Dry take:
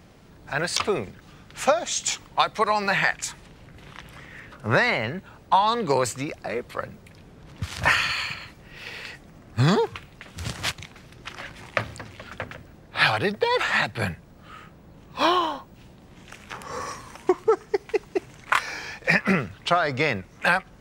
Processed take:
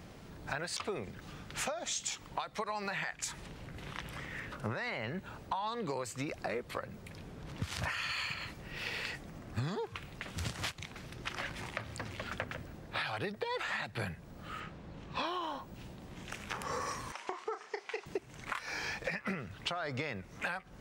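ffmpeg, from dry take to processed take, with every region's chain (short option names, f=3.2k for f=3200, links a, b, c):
-filter_complex "[0:a]asettb=1/sr,asplit=3[a][b][c];[a]atrim=end=14.604[d];[b]atrim=start=14.6:end=15.26,asetpts=PTS-STARTPTS,afade=t=in:d=0.004:c=qsin,afade=t=out:st=0.656:d=0.004:c=qsin,lowpass=3.4k,aemphasis=mode=production:type=75kf[e];[c]atrim=start=15.256[f];[d][e]acrossfade=d=0.004:c1=hsin:c2=qsin[g];[g][f]acrossfade=d=0.004:c1=qsin:c2=hsin,asettb=1/sr,asplit=3[h][i][j];[h]atrim=end=17.124[k];[i]atrim=start=17.12:end=18.06,asetpts=PTS-STARTPTS,afade=t=in:d=0.004:c=qsin,afade=t=out:st=0.936:d=0.004:c=qsin,highpass=740,lowpass=6.3k,acompressor=threshold=-31dB:ratio=3:attack=3.2:release=140:knee=1:detection=peak,asplit=2[l][m];[m]adelay=32,volume=-9dB[n];[l][n]amix=inputs=2:normalize=0,atrim=end_sample=41454[o];[j]atrim=start=18.056[p];[k][o]acrossfade=d=0.004:c1=hsin:c2=qsin[q];[q][p]acrossfade=d=0.004:c1=qsin:c2=hsin,alimiter=limit=-16.5dB:level=0:latency=1:release=353,acompressor=threshold=-34dB:ratio=6"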